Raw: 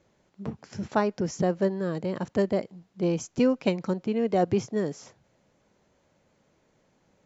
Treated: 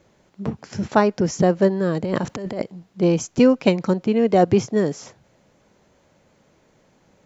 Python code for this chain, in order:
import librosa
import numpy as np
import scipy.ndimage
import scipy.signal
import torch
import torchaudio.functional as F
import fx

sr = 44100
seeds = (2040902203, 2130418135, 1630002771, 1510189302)

y = fx.over_compress(x, sr, threshold_db=-33.0, ratio=-1.0, at=(2.03, 2.62))
y = F.gain(torch.from_numpy(y), 8.0).numpy()